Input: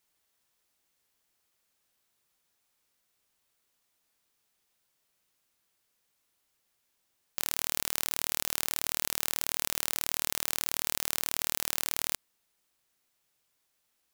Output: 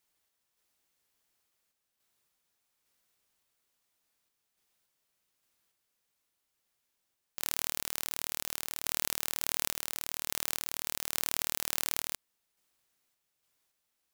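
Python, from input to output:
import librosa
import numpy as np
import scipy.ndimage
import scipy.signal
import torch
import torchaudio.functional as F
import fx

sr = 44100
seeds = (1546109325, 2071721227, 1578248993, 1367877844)

y = fx.tremolo_random(x, sr, seeds[0], hz=3.5, depth_pct=55)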